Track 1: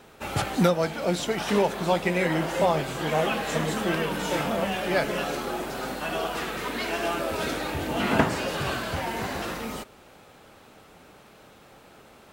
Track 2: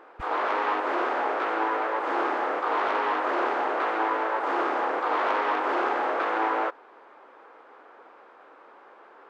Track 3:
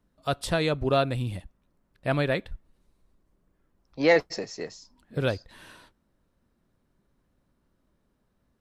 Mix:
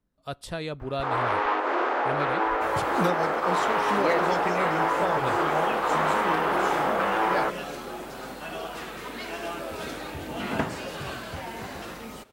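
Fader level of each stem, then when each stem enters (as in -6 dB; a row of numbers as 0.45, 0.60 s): -6.0, +1.0, -7.5 dB; 2.40, 0.80, 0.00 s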